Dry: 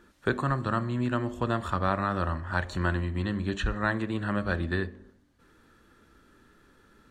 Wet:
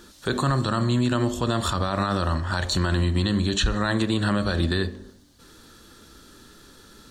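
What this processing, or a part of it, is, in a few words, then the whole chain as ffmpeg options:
over-bright horn tweeter: -af "highshelf=frequency=3000:width_type=q:width=1.5:gain=9.5,alimiter=limit=-22dB:level=0:latency=1:release=42,volume=9dB"

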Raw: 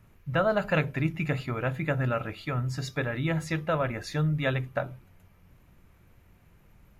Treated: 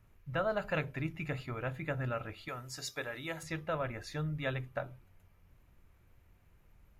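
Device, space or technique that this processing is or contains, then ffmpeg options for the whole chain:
low shelf boost with a cut just above: -filter_complex "[0:a]lowshelf=frequency=81:gain=5,equalizer=frequency=180:width_type=o:width=1.1:gain=-4.5,asettb=1/sr,asplit=3[link_01][link_02][link_03];[link_01]atrim=end=2.484[link_04];[link_02]atrim=start=2.48:end=3.43,asetpts=PTS-STARTPTS,afade=type=in:duration=0.004:curve=qsin,afade=type=out:start_time=0.946:duration=0.004:curve=qsin,bass=frequency=250:gain=-12,treble=frequency=4000:gain=10[link_05];[link_03]atrim=start=3.426[link_06];[link_04][link_05]acrossfade=duration=0.004:curve1=hsin:curve2=qsin[link_07];[link_07][link_06]acrossfade=duration=0.004:curve1=qsin:curve2=hsin,volume=-7.5dB"

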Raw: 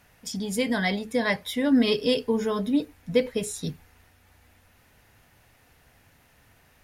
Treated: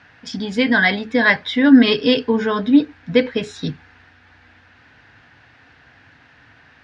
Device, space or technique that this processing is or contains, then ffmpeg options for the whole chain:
guitar cabinet: -af "highpass=93,equalizer=frequency=190:width_type=q:width=4:gain=-6,equalizer=frequency=280:width_type=q:width=4:gain=4,equalizer=frequency=400:width_type=q:width=4:gain=-4,equalizer=frequency=570:width_type=q:width=4:gain=-5,equalizer=frequency=1600:width_type=q:width=4:gain=9,lowpass=frequency=4600:width=0.5412,lowpass=frequency=4600:width=1.3066,volume=9dB"

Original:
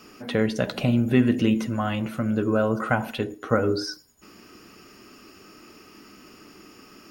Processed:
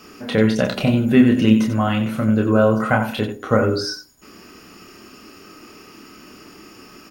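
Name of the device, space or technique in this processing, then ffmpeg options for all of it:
slapback doubling: -filter_complex "[0:a]asplit=3[link_01][link_02][link_03];[link_02]adelay=28,volume=-4dB[link_04];[link_03]adelay=91,volume=-9dB[link_05];[link_01][link_04][link_05]amix=inputs=3:normalize=0,volume=4dB"

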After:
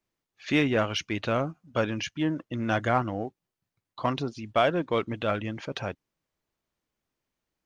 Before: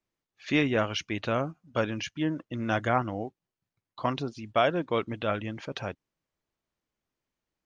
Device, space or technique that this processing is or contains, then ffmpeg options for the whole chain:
parallel distortion: -filter_complex "[0:a]asplit=2[link_01][link_02];[link_02]asoftclip=type=hard:threshold=-27dB,volume=-11dB[link_03];[link_01][link_03]amix=inputs=2:normalize=0"

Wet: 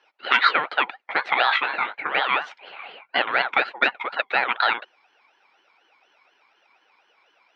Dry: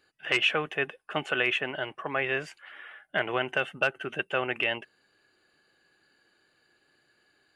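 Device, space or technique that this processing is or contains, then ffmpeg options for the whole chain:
voice changer toy: -filter_complex "[0:a]aeval=exprs='val(0)*sin(2*PI*970*n/s+970*0.4/4.1*sin(2*PI*4.1*n/s))':channel_layout=same,highpass=450,equalizer=frequency=790:width_type=q:width=4:gain=5,equalizer=frequency=1400:width_type=q:width=4:gain=7,equalizer=frequency=2300:width_type=q:width=4:gain=5,equalizer=frequency=3700:width_type=q:width=4:gain=-5,lowpass=frequency=4700:width=0.5412,lowpass=frequency=4700:width=1.3066,asettb=1/sr,asplit=3[link_01][link_02][link_03];[link_01]atrim=end=1.474[link_04];[link_02]atrim=start=1.47:end=2.19,asetpts=PTS-STARTPTS,afade=type=in:duration=0.004:curve=qsin,afade=type=out:start_time=0.716:duration=0.004:curve=qsin,asplit=2[link_05][link_06];[link_06]adelay=20,volume=-6.5dB[link_07];[link_05][link_07]amix=inputs=2:normalize=0,atrim=end_sample=31752[link_08];[link_03]atrim=start=2.186[link_09];[link_04][link_08]acrossfade=duration=0.004:curve1=hsin:curve2=qsin[link_10];[link_10][link_09]acrossfade=duration=0.004:curve1=qsin:curve2=hsin,volume=7.5dB"

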